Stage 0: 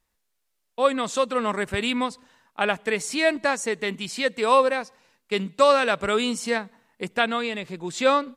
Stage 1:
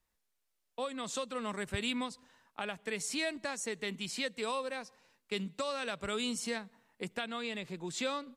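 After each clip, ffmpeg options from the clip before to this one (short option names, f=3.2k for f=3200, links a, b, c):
-filter_complex "[0:a]alimiter=limit=-12dB:level=0:latency=1:release=298,acrossover=split=190|3000[a][b][c];[b]acompressor=threshold=-35dB:ratio=2[d];[a][d][c]amix=inputs=3:normalize=0,volume=-6dB"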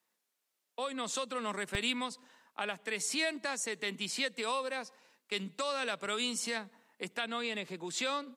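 -filter_complex "[0:a]acrossover=split=170|750|3600[a][b][c][d];[a]acrusher=bits=3:dc=4:mix=0:aa=0.000001[e];[b]alimiter=level_in=13dB:limit=-24dB:level=0:latency=1:release=84,volume=-13dB[f];[e][f][c][d]amix=inputs=4:normalize=0,volume=3dB"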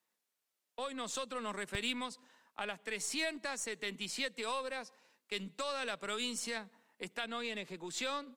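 -af "aeval=exprs='0.119*(cos(1*acos(clip(val(0)/0.119,-1,1)))-cos(1*PI/2))+0.00266*(cos(8*acos(clip(val(0)/0.119,-1,1)))-cos(8*PI/2))':c=same,volume=-3.5dB"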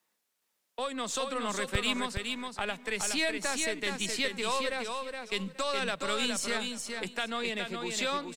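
-filter_complex "[0:a]acrossover=split=110|6900[a][b][c];[a]dynaudnorm=f=270:g=11:m=9.5dB[d];[d][b][c]amix=inputs=3:normalize=0,aecho=1:1:418|836|1254:0.562|0.112|0.0225,volume=6dB"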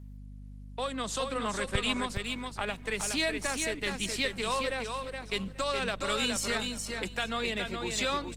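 -af "aeval=exprs='val(0)+0.00562*(sin(2*PI*50*n/s)+sin(2*PI*2*50*n/s)/2+sin(2*PI*3*50*n/s)/3+sin(2*PI*4*50*n/s)/4+sin(2*PI*5*50*n/s)/5)':c=same,volume=1dB" -ar 48000 -c:a libopus -b:a 20k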